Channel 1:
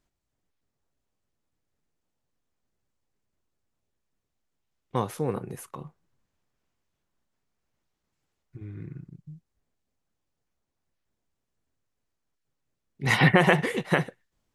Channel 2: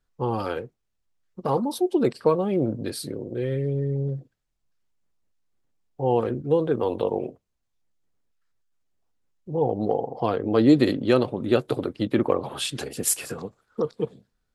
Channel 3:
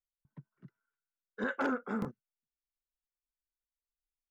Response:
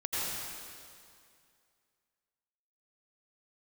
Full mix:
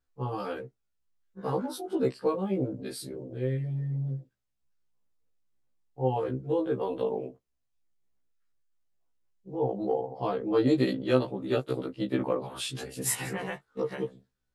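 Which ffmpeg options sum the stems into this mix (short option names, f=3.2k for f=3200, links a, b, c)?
-filter_complex "[0:a]volume=-14dB[a];[1:a]volume=-3.5dB,asplit=2[b][c];[2:a]volume=-15.5dB[d];[c]apad=whole_len=641622[e];[a][e]sidechaingate=range=-52dB:threshold=-48dB:ratio=16:detection=peak[f];[f][b][d]amix=inputs=3:normalize=0,afftfilt=real='re*1.73*eq(mod(b,3),0)':imag='im*1.73*eq(mod(b,3),0)':win_size=2048:overlap=0.75"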